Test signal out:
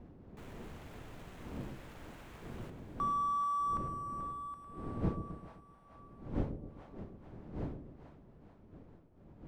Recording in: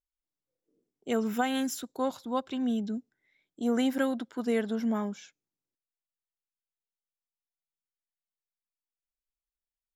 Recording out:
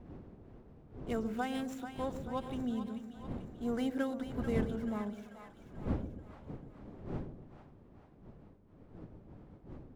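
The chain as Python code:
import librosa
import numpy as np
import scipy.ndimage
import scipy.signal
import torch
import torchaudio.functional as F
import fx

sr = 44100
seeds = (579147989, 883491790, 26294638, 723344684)

y = scipy.signal.medfilt(x, 9)
y = fx.dmg_wind(y, sr, seeds[0], corner_hz=270.0, level_db=-38.0)
y = fx.echo_split(y, sr, split_hz=650.0, low_ms=129, high_ms=437, feedback_pct=52, wet_db=-9)
y = y * 10.0 ** (-7.5 / 20.0)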